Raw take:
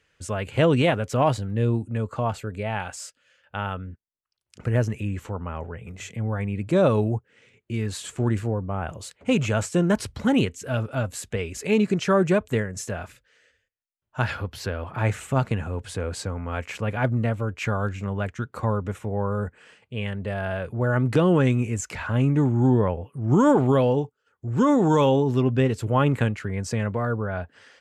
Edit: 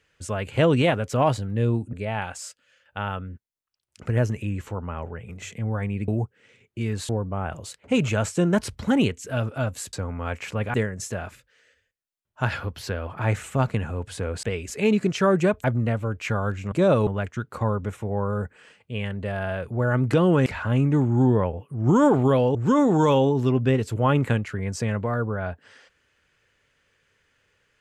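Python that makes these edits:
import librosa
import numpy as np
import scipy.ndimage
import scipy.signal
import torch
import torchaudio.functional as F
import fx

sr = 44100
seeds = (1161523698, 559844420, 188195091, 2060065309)

y = fx.edit(x, sr, fx.cut(start_s=1.93, length_s=0.58),
    fx.move(start_s=6.66, length_s=0.35, to_s=18.09),
    fx.cut(start_s=8.02, length_s=0.44),
    fx.swap(start_s=11.3, length_s=1.21, other_s=16.2, other_length_s=0.81),
    fx.cut(start_s=21.48, length_s=0.42),
    fx.cut(start_s=23.99, length_s=0.47), tone=tone)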